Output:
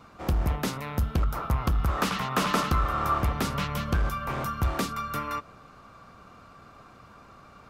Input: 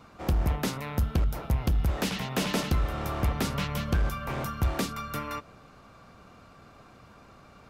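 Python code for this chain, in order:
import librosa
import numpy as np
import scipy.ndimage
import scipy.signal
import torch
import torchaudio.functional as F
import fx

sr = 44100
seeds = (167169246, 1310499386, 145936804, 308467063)

y = fx.peak_eq(x, sr, hz=1200.0, db=fx.steps((0.0, 3.0), (1.23, 14.5), (3.18, 5.5)), octaves=0.61)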